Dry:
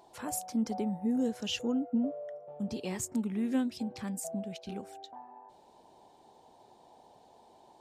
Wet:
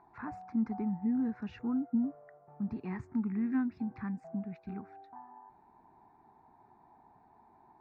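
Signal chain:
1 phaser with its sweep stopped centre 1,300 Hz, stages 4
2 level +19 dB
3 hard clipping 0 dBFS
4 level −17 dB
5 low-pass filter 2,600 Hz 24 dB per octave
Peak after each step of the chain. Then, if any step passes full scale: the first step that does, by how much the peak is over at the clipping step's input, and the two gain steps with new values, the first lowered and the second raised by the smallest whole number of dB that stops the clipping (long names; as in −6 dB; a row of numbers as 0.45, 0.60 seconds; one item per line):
−24.0, −5.0, −5.0, −22.0, −22.0 dBFS
no step passes full scale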